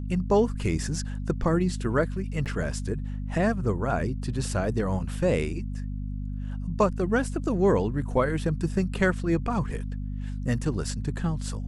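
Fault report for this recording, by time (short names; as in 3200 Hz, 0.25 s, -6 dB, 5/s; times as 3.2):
hum 50 Hz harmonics 5 -32 dBFS
2.45–2.46 gap 8.4 ms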